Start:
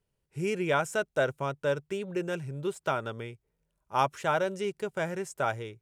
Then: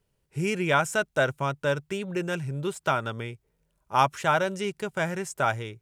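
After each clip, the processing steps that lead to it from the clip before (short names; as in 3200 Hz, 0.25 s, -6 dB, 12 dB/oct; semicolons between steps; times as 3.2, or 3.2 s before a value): dynamic EQ 450 Hz, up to -6 dB, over -43 dBFS, Q 1.3; gain +6 dB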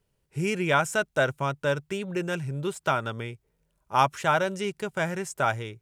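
nothing audible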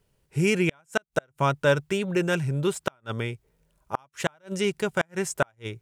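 flipped gate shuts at -15 dBFS, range -40 dB; gain +5 dB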